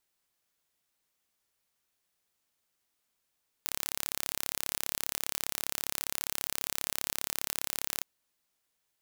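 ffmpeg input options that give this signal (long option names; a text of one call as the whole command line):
ffmpeg -f lavfi -i "aevalsrc='0.562*eq(mod(n,1264),0)':duration=4.37:sample_rate=44100" out.wav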